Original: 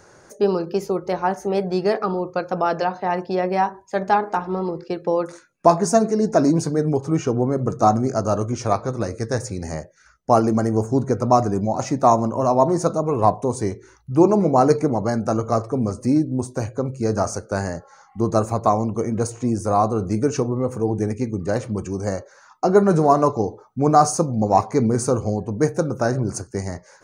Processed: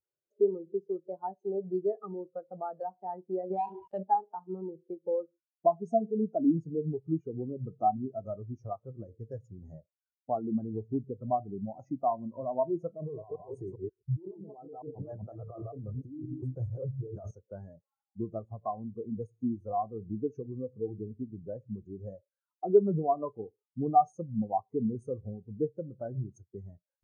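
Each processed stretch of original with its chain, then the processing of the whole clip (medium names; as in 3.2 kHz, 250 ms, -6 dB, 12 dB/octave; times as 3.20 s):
3.50–4.03 s: dead-time distortion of 0.21 ms + level flattener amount 70%
12.96–17.31 s: chunks repeated in reverse 133 ms, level -3 dB + compressor with a negative ratio -23 dBFS + peaking EQ 230 Hz -13.5 dB 0.22 oct
whole clip: compression 2:1, threshold -30 dBFS; spectral contrast expander 2.5:1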